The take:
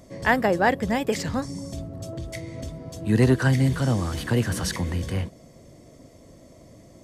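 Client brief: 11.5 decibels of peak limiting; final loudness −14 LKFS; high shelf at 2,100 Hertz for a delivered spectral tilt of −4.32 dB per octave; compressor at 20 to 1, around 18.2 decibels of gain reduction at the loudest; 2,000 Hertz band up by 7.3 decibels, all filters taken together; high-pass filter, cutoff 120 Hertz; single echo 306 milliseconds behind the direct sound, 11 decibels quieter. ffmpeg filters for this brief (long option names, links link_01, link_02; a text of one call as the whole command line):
ffmpeg -i in.wav -af "highpass=120,equalizer=frequency=2000:width_type=o:gain=6,highshelf=frequency=2100:gain=5.5,acompressor=threshold=-28dB:ratio=20,alimiter=level_in=1dB:limit=-24dB:level=0:latency=1,volume=-1dB,aecho=1:1:306:0.282,volume=21dB" out.wav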